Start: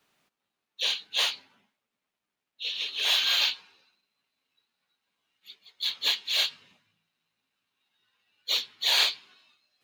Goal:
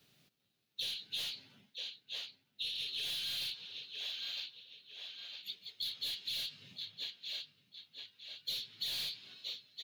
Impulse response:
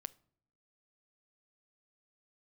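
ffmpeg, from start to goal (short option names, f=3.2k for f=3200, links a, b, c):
-filter_complex "[0:a]acrusher=bits=9:mode=log:mix=0:aa=0.000001,asplit=2[a][b];[b]adelay=958,lowpass=f=4.4k:p=1,volume=-17dB,asplit=2[c][d];[d]adelay=958,lowpass=f=4.4k:p=1,volume=0.44,asplit=2[e][f];[f]adelay=958,lowpass=f=4.4k:p=1,volume=0.44,asplit=2[g][h];[h]adelay=958,lowpass=f=4.4k:p=1,volume=0.44[i];[c][e][g][i]amix=inputs=4:normalize=0[j];[a][j]amix=inputs=2:normalize=0,aeval=exprs='(tanh(22.4*val(0)+0.1)-tanh(0.1))/22.4':c=same,highshelf=f=6.6k:g=4,asplit=2[k][l];[l]alimiter=level_in=5dB:limit=-24dB:level=0:latency=1:release=293,volume=-5dB,volume=1.5dB[m];[k][m]amix=inputs=2:normalize=0,equalizer=f=125:t=o:w=1:g=12,equalizer=f=1k:t=o:w=1:g=-11,equalizer=f=2k:t=o:w=1:g=-3,equalizer=f=4k:t=o:w=1:g=5,equalizer=f=8k:t=o:w=1:g=-5,acompressor=threshold=-33dB:ratio=6,volume=-4.5dB"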